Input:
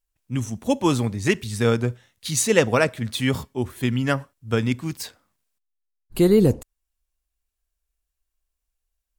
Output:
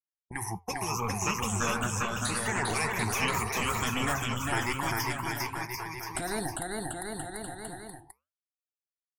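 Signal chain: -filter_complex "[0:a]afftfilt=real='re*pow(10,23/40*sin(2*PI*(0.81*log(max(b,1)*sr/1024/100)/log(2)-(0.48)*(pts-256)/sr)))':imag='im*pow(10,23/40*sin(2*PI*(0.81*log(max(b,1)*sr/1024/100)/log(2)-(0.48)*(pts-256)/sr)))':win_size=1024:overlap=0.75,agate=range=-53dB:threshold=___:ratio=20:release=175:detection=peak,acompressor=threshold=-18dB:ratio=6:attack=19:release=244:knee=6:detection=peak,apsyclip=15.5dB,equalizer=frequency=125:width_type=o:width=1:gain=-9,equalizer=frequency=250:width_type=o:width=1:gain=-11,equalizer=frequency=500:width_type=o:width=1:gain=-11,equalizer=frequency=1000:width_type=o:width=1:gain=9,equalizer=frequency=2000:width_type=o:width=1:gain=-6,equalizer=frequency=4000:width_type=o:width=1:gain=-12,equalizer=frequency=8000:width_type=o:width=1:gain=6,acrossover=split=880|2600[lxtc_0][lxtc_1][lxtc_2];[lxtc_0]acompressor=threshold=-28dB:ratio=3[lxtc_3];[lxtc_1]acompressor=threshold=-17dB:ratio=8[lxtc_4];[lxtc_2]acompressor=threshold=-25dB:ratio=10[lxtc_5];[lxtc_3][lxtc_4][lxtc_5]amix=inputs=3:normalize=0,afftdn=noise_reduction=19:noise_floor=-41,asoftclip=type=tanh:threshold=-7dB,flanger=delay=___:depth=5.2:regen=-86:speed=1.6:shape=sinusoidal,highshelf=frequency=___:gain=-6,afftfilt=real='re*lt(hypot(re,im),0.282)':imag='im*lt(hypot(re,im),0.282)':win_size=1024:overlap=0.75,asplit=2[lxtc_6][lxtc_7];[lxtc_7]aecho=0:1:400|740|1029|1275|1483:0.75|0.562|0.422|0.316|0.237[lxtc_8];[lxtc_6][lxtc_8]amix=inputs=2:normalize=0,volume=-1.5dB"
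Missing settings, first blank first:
-33dB, 5.4, 5700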